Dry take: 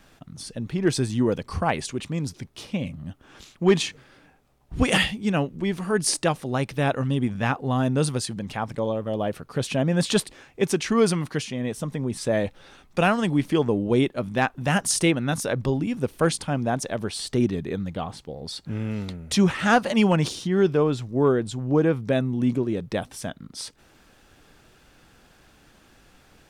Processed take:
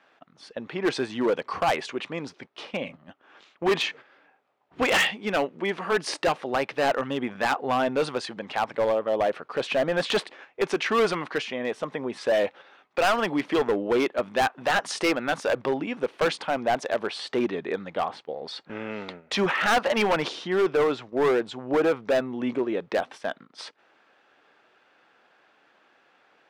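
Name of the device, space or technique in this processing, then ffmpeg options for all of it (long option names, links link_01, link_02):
walkie-talkie: -af "highpass=510,lowpass=2600,asoftclip=type=hard:threshold=-25dB,agate=range=-8dB:threshold=-49dB:ratio=16:detection=peak,volume=7dB"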